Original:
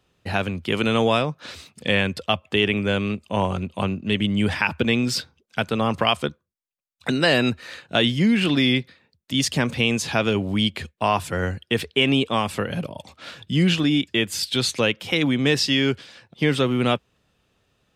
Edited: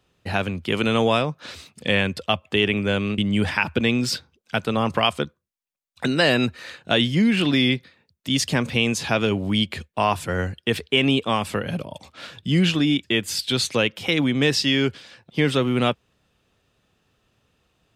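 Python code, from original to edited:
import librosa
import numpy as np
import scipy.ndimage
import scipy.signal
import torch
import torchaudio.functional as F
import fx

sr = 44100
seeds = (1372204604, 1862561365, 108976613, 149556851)

y = fx.edit(x, sr, fx.cut(start_s=3.18, length_s=1.04), tone=tone)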